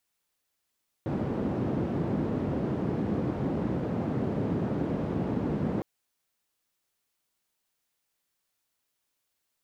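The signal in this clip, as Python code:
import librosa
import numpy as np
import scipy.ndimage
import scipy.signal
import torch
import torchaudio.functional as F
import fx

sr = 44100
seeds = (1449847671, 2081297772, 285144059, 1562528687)

y = fx.band_noise(sr, seeds[0], length_s=4.76, low_hz=120.0, high_hz=270.0, level_db=-29.5)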